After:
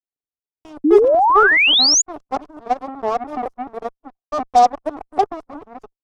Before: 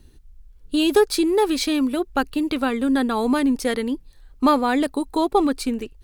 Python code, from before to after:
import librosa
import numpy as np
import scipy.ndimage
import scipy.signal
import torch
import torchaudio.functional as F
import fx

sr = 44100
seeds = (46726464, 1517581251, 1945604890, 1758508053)

y = fx.local_reverse(x, sr, ms=216.0)
y = fx.leveller(y, sr, passes=5)
y = fx.small_body(y, sr, hz=(290.0, 410.0, 3500.0), ring_ms=60, db=12)
y = fx.dynamic_eq(y, sr, hz=800.0, q=1.1, threshold_db=-19.0, ratio=4.0, max_db=6)
y = fx.vowel_filter(y, sr, vowel='a')
y = fx.cheby_harmonics(y, sr, harmonics=(5, 7, 8), levels_db=(-35, -16, -28), full_scale_db=-3.0)
y = fx.band_shelf(y, sr, hz=2600.0, db=-11.5, octaves=1.7)
y = fx.spec_paint(y, sr, seeds[0], shape='rise', start_s=0.84, length_s=1.18, low_hz=280.0, high_hz=7100.0, level_db=-11.0)
y = fx.upward_expand(y, sr, threshold_db=-23.0, expansion=1.5)